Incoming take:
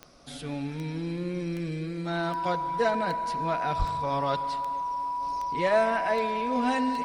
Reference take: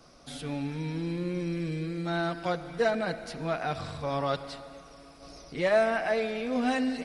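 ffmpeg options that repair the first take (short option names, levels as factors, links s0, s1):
-filter_complex "[0:a]adeclick=t=4,bandreject=f=980:w=30,asplit=3[s0][s1][s2];[s0]afade=t=out:st=3.78:d=0.02[s3];[s1]highpass=f=140:w=0.5412,highpass=f=140:w=1.3066,afade=t=in:st=3.78:d=0.02,afade=t=out:st=3.9:d=0.02[s4];[s2]afade=t=in:st=3.9:d=0.02[s5];[s3][s4][s5]amix=inputs=3:normalize=0"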